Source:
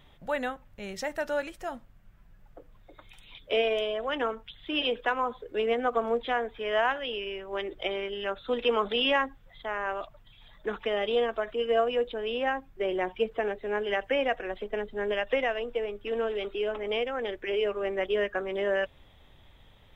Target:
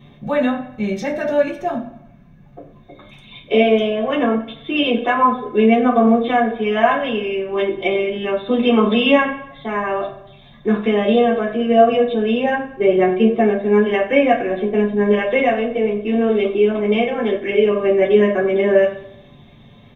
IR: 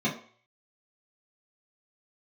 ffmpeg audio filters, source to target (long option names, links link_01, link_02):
-filter_complex "[0:a]lowshelf=frequency=82:gain=7.5,asplit=2[link_01][link_02];[link_02]adelay=92,lowpass=frequency=3800:poles=1,volume=-15.5dB,asplit=2[link_03][link_04];[link_04]adelay=92,lowpass=frequency=3800:poles=1,volume=0.53,asplit=2[link_05][link_06];[link_06]adelay=92,lowpass=frequency=3800:poles=1,volume=0.53,asplit=2[link_07][link_08];[link_08]adelay=92,lowpass=frequency=3800:poles=1,volume=0.53,asplit=2[link_09][link_10];[link_10]adelay=92,lowpass=frequency=3800:poles=1,volume=0.53[link_11];[link_01][link_03][link_05][link_07][link_09][link_11]amix=inputs=6:normalize=0[link_12];[1:a]atrim=start_sample=2205[link_13];[link_12][link_13]afir=irnorm=-1:irlink=0"